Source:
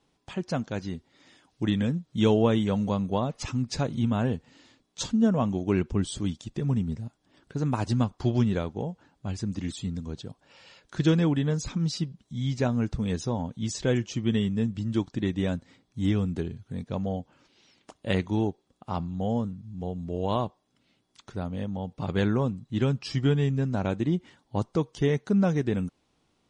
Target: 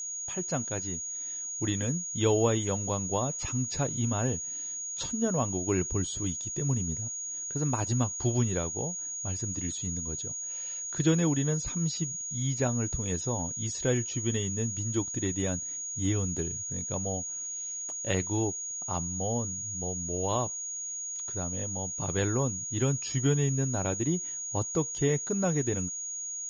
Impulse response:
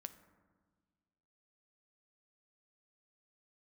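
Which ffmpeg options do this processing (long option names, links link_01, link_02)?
-filter_complex "[0:a]equalizer=frequency=210:width=7.7:gain=-14.5,acrossover=split=5600[link_01][link_02];[link_02]acompressor=threshold=-54dB:ratio=4:attack=1:release=60[link_03];[link_01][link_03]amix=inputs=2:normalize=0,aeval=exprs='val(0)+0.0251*sin(2*PI*6700*n/s)':channel_layout=same,volume=-2dB"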